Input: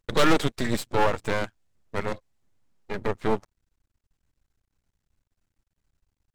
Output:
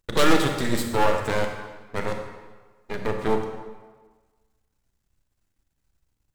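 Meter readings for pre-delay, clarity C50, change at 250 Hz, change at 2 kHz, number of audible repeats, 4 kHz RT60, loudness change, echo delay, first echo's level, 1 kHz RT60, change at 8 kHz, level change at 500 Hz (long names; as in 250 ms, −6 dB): 27 ms, 5.5 dB, +2.0 dB, +1.5 dB, no echo audible, 1.1 s, +2.0 dB, no echo audible, no echo audible, 1.4 s, +4.0 dB, +2.0 dB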